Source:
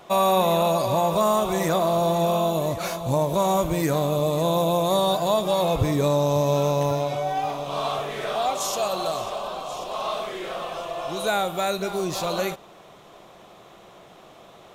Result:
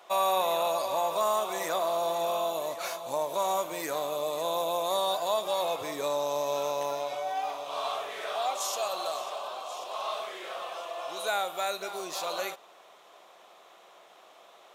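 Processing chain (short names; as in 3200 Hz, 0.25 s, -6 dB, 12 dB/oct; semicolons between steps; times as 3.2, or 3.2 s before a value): HPF 580 Hz 12 dB/oct; gain -4.5 dB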